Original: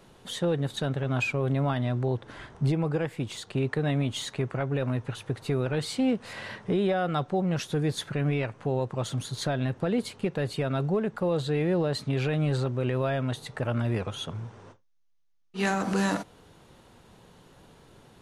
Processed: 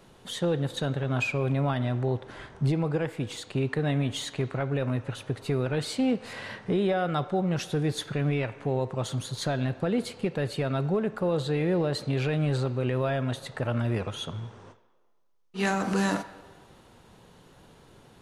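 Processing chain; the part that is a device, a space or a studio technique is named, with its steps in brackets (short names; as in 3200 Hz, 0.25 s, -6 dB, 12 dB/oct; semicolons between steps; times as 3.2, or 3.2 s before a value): filtered reverb send (on a send: HPF 360 Hz + LPF 5900 Hz + reverb RT60 1.6 s, pre-delay 27 ms, DRR 13 dB)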